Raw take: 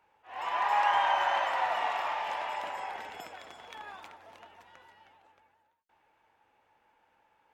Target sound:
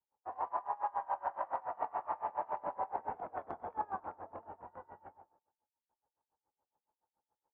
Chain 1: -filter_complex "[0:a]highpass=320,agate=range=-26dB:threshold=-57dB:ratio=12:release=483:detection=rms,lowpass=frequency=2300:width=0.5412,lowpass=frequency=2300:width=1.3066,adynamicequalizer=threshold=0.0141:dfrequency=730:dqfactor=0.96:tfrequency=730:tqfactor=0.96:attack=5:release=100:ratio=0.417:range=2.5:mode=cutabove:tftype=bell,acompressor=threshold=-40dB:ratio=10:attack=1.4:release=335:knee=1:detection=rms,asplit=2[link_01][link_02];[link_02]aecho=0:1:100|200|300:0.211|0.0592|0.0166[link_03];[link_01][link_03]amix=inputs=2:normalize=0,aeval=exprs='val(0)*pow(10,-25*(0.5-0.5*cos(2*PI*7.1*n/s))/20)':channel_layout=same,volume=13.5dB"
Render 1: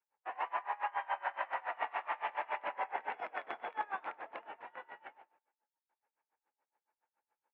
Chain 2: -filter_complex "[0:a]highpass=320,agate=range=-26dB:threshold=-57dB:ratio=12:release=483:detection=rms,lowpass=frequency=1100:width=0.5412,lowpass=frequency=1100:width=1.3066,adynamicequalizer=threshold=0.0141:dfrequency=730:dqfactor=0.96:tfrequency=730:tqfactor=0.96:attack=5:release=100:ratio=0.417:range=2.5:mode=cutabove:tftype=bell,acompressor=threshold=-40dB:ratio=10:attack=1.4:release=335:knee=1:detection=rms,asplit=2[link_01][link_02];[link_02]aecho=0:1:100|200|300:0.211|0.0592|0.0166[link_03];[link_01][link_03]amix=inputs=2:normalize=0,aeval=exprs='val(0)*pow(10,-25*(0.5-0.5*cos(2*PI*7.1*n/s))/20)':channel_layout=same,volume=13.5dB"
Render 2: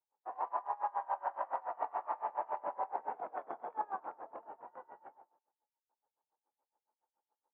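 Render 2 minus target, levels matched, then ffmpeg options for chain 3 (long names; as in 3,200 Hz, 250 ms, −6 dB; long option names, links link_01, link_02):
250 Hz band −3.5 dB
-filter_complex "[0:a]agate=range=-26dB:threshold=-57dB:ratio=12:release=483:detection=rms,lowpass=frequency=1100:width=0.5412,lowpass=frequency=1100:width=1.3066,adynamicequalizer=threshold=0.0141:dfrequency=730:dqfactor=0.96:tfrequency=730:tqfactor=0.96:attack=5:release=100:ratio=0.417:range=2.5:mode=cutabove:tftype=bell,acompressor=threshold=-40dB:ratio=10:attack=1.4:release=335:knee=1:detection=rms,asplit=2[link_01][link_02];[link_02]aecho=0:1:100|200|300:0.211|0.0592|0.0166[link_03];[link_01][link_03]amix=inputs=2:normalize=0,aeval=exprs='val(0)*pow(10,-25*(0.5-0.5*cos(2*PI*7.1*n/s))/20)':channel_layout=same,volume=13.5dB"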